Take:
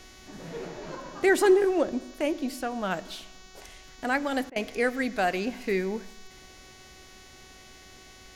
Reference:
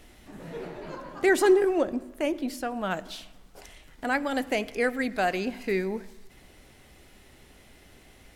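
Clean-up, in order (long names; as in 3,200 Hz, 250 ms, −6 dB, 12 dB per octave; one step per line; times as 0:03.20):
hum removal 373.8 Hz, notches 19
repair the gap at 0:04.50, 58 ms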